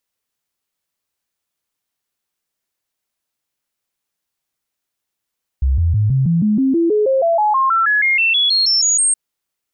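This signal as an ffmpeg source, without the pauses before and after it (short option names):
-f lavfi -i "aevalsrc='0.266*clip(min(mod(t,0.16),0.16-mod(t,0.16))/0.005,0,1)*sin(2*PI*66.6*pow(2,floor(t/0.16)/3)*mod(t,0.16))':d=3.52:s=44100"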